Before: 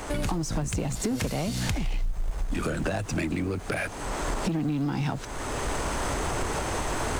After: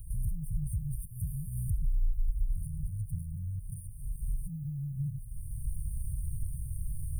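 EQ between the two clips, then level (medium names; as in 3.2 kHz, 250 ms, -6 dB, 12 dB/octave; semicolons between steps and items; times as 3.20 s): brick-wall FIR band-stop 170–8600 Hz; static phaser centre 1.4 kHz, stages 8; 0.0 dB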